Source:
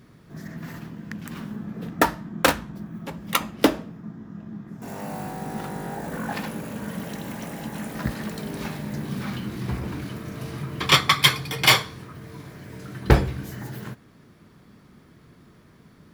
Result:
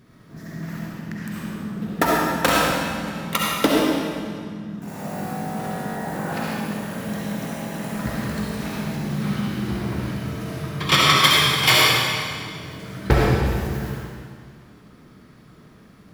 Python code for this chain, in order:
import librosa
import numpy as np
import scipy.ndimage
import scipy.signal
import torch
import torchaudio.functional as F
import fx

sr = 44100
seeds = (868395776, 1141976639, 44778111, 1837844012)

y = fx.rev_freeverb(x, sr, rt60_s=2.0, hf_ratio=0.95, predelay_ms=25, drr_db=-5.0)
y = y * librosa.db_to_amplitude(-2.0)